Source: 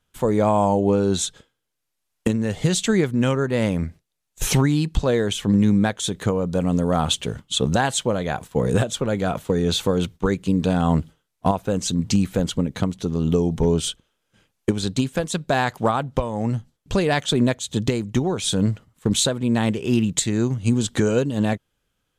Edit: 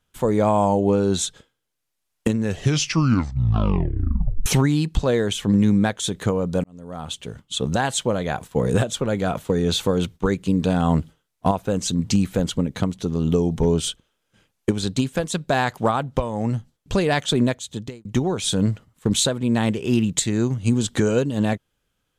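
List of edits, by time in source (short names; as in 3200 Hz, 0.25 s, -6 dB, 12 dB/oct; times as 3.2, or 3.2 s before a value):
2.4 tape stop 2.06 s
6.64–8.06 fade in
17.4–18.05 fade out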